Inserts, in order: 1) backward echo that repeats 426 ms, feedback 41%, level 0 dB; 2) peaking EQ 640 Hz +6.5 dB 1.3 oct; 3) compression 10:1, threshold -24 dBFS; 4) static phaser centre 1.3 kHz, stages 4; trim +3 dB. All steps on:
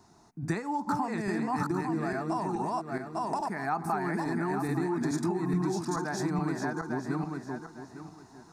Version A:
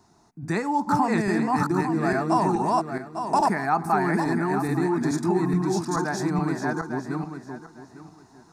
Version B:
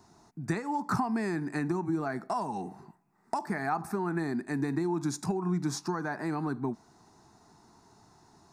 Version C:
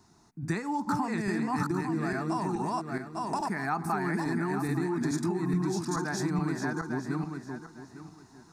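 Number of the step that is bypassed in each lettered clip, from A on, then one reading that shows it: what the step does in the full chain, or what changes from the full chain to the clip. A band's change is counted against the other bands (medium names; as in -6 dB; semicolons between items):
3, mean gain reduction 5.5 dB; 1, 8 kHz band +2.0 dB; 2, 500 Hz band -2.5 dB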